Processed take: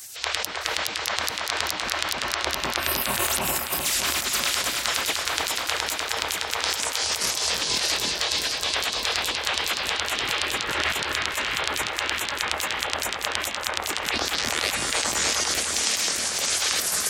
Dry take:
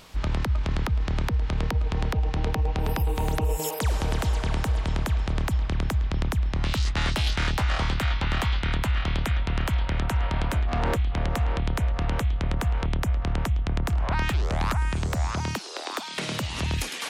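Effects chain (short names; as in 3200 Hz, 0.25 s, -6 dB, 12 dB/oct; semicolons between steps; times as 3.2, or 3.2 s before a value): HPF 150 Hz 24 dB/oct; spectral gate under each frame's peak -15 dB weak; tone controls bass 0 dB, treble +6 dB; negative-ratio compressor -39 dBFS, ratio -0.5; echo with dull and thin repeats by turns 0.306 s, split 2000 Hz, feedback 71%, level -2 dB; maximiser +17.5 dB; gain -4 dB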